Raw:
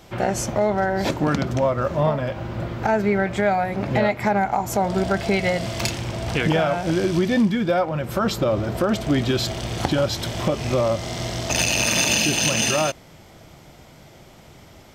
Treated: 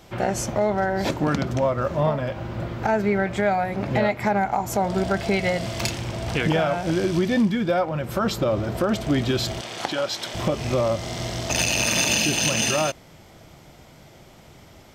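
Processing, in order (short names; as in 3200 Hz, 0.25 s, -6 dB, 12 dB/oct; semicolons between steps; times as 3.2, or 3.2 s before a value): 9.61–10.34 weighting filter A; gain -1.5 dB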